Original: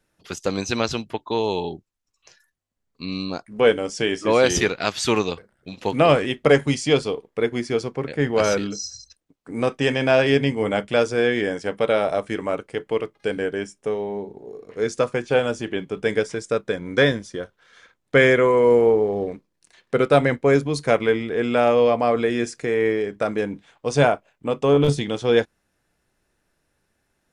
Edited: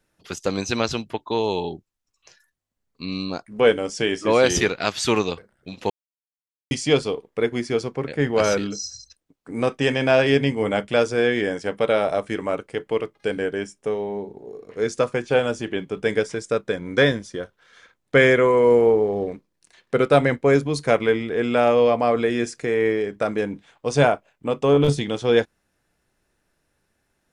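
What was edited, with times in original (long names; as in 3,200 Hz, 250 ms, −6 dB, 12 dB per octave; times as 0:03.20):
0:05.90–0:06.71: silence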